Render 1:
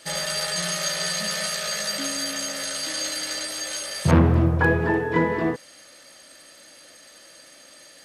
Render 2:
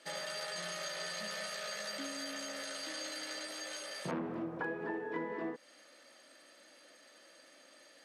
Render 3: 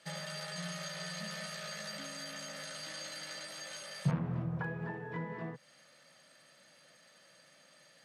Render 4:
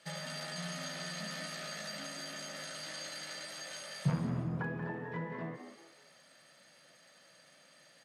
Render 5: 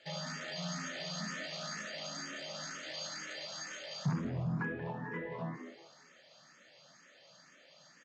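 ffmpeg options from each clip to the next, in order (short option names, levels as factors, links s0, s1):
-af "highpass=f=210:w=0.5412,highpass=f=210:w=1.3066,highshelf=f=4900:g=-11,acompressor=threshold=0.0316:ratio=3,volume=0.398"
-af "lowshelf=f=200:t=q:w=3:g=13.5,volume=0.841"
-filter_complex "[0:a]asplit=5[s0][s1][s2][s3][s4];[s1]adelay=184,afreqshift=85,volume=0.316[s5];[s2]adelay=368,afreqshift=170,volume=0.107[s6];[s3]adelay=552,afreqshift=255,volume=0.0367[s7];[s4]adelay=736,afreqshift=340,volume=0.0124[s8];[s0][s5][s6][s7][s8]amix=inputs=5:normalize=0"
-filter_complex "[0:a]asoftclip=type=tanh:threshold=0.0335,aresample=16000,aresample=44100,asplit=2[s0][s1];[s1]afreqshift=2.1[s2];[s0][s2]amix=inputs=2:normalize=1,volume=1.58"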